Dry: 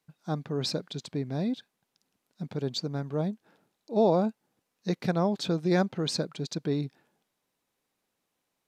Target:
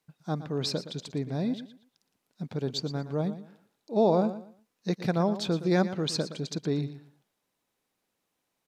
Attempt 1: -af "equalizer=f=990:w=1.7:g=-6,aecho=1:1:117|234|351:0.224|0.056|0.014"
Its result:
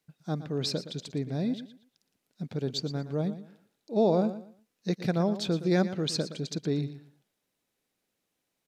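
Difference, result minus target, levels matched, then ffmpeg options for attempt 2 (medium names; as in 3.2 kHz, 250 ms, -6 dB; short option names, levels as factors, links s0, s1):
1 kHz band -3.0 dB
-af "aecho=1:1:117|234|351:0.224|0.056|0.014"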